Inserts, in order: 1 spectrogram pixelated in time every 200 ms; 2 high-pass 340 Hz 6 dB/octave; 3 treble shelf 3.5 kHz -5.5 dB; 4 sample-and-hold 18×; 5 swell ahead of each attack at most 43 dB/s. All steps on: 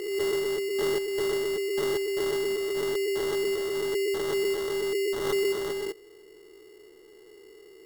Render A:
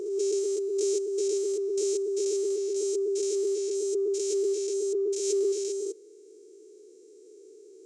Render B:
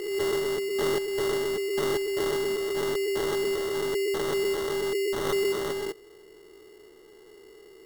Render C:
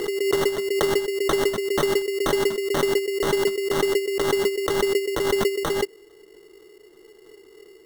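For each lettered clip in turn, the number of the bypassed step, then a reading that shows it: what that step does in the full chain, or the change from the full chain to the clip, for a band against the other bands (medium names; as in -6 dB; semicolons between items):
4, distortion -3 dB; 3, 125 Hz band +3.5 dB; 1, 1 kHz band +5.0 dB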